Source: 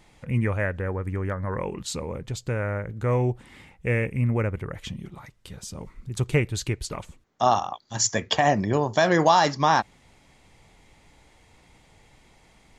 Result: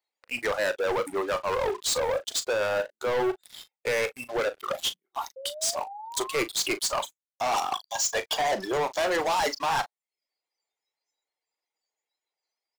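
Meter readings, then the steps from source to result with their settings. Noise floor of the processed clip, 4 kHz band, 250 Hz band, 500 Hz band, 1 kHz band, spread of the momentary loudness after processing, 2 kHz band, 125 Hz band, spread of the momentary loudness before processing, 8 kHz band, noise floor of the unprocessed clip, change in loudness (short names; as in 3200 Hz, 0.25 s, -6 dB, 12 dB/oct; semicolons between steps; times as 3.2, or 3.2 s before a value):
under -85 dBFS, +2.0 dB, -9.0 dB, -0.5 dB, -4.0 dB, 8 LU, -1.0 dB, -22.0 dB, 18 LU, +1.5 dB, -58 dBFS, -3.0 dB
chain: reverb removal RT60 0.6 s; HPF 410 Hz 24 dB/oct; spectral noise reduction 24 dB; reverse; compressor 5:1, threshold -35 dBFS, peak gain reduction 19 dB; reverse; sample leveller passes 5; in parallel at -8 dB: wavefolder -39 dBFS; on the sum: painted sound rise, 5.36–6.44, 520–1200 Hz -40 dBFS; doubler 38 ms -13 dB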